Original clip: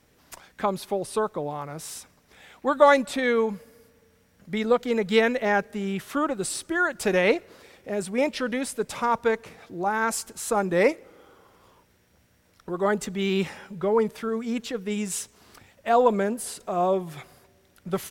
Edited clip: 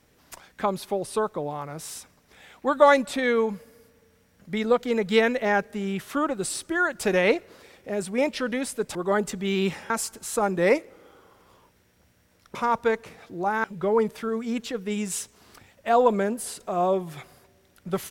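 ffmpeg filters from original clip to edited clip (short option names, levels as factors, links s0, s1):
-filter_complex "[0:a]asplit=5[s0][s1][s2][s3][s4];[s0]atrim=end=8.952[s5];[s1]atrim=start=12.688:end=13.642[s6];[s2]atrim=start=10.038:end=12.692[s7];[s3]atrim=start=8.948:end=10.042[s8];[s4]atrim=start=13.638[s9];[s5][s6]acrossfade=d=0.004:c1=hsin:c2=hsin[s10];[s10][s7]acrossfade=d=0.004:c1=hsin:c2=hsin[s11];[s11][s8]acrossfade=d=0.004:c1=hsin:c2=hsin[s12];[s12][s9]acrossfade=d=0.004:c1=hsin:c2=hsin"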